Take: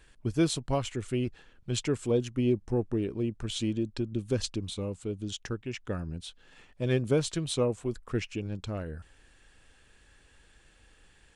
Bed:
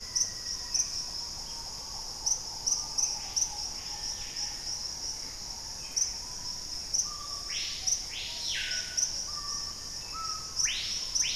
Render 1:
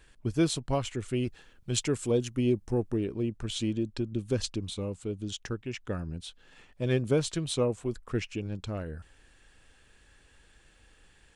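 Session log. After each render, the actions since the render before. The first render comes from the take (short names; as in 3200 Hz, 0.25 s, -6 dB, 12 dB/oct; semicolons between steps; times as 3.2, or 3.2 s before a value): 1.16–2.97 high shelf 5900 Hz +8.5 dB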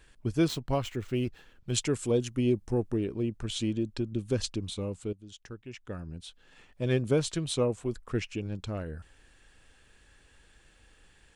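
0.48–1.72 median filter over 5 samples; 5.13–6.87 fade in, from -15.5 dB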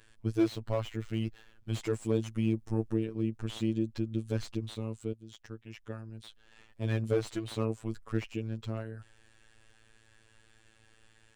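robotiser 111 Hz; slew limiter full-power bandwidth 38 Hz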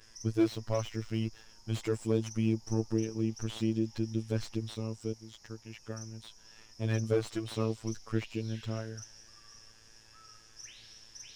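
add bed -20.5 dB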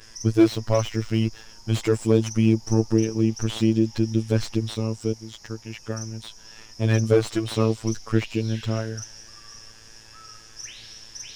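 gain +10.5 dB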